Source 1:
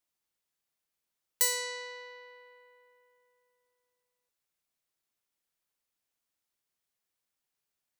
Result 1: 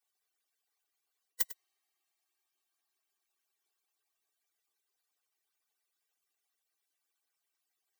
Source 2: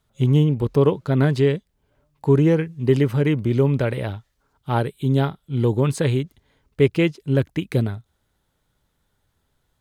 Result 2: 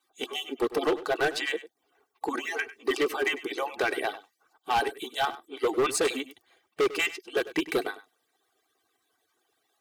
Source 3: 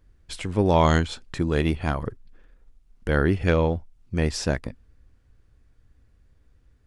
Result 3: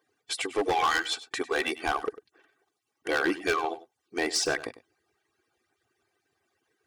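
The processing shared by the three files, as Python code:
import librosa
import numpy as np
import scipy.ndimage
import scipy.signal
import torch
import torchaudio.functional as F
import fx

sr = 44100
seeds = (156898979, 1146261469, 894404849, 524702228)

y = fx.hpss_only(x, sr, part='percussive')
y = scipy.signal.sosfilt(scipy.signal.butter(2, 420.0, 'highpass', fs=sr, output='sos'), y)
y = y + 0.68 * np.pad(y, (int(2.6 * sr / 1000.0), 0))[:len(y)]
y = np.clip(10.0 ** (24.0 / 20.0) * y, -1.0, 1.0) / 10.0 ** (24.0 / 20.0)
y = y + 10.0 ** (-16.0 / 20.0) * np.pad(y, (int(99 * sr / 1000.0), 0))[:len(y)]
y = y * 10.0 ** (3.5 / 20.0)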